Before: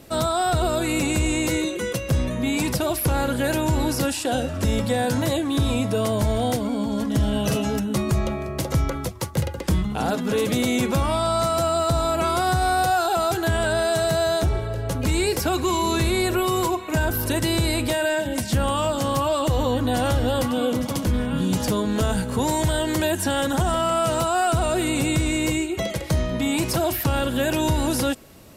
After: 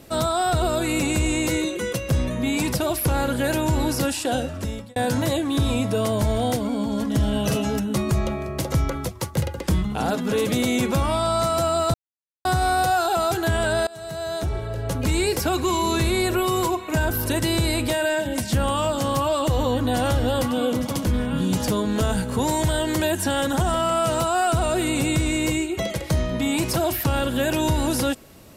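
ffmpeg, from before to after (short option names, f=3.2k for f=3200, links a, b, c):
-filter_complex "[0:a]asplit=5[a][b][c][d][e];[a]atrim=end=4.96,asetpts=PTS-STARTPTS,afade=t=out:st=4.34:d=0.62[f];[b]atrim=start=4.96:end=11.94,asetpts=PTS-STARTPTS,afade=t=in:d=0.004:c=hsin,afade=t=out:st=6.976:d=0.004:c=hsin[g];[c]atrim=start=11.94:end=12.45,asetpts=PTS-STARTPTS,volume=0[h];[d]atrim=start=12.45:end=13.87,asetpts=PTS-STARTPTS,afade=t=in:d=0.004:c=hsin,afade=t=out:st=1.416:d=0.004:c=hsin:silence=0.0668344[i];[e]atrim=start=13.87,asetpts=PTS-STARTPTS,afade=t=in:d=1.01:silence=0.0668344[j];[f][g][h][i][j]concat=n=5:v=0:a=1"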